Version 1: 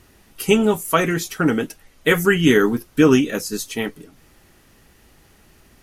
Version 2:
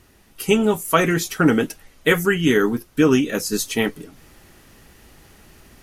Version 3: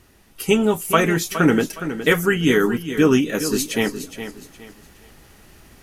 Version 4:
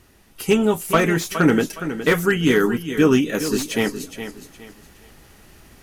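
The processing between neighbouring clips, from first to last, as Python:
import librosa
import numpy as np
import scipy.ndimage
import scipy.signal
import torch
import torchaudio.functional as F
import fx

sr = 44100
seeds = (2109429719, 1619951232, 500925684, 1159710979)

y1 = fx.rider(x, sr, range_db=4, speed_s=0.5)
y2 = fx.echo_feedback(y1, sr, ms=415, feedback_pct=30, wet_db=-11.0)
y3 = fx.slew_limit(y2, sr, full_power_hz=330.0)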